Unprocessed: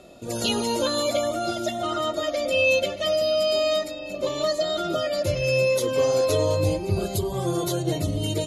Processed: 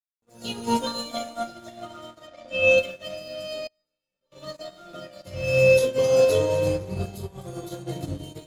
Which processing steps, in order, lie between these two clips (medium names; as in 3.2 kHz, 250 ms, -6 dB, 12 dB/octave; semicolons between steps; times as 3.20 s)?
0.67–1.43 s: comb 4.4 ms, depth 82%; echo whose repeats swap between lows and highs 128 ms, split 1.4 kHz, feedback 76%, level -9.5 dB; simulated room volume 440 m³, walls furnished, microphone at 1.8 m; crossover distortion -36.5 dBFS; 2.27–2.78 s: distance through air 65 m; 3.67–4.32 s: feedback comb 450 Hz, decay 0.21 s, harmonics all, mix 90%; upward expansion 2.5:1, over -38 dBFS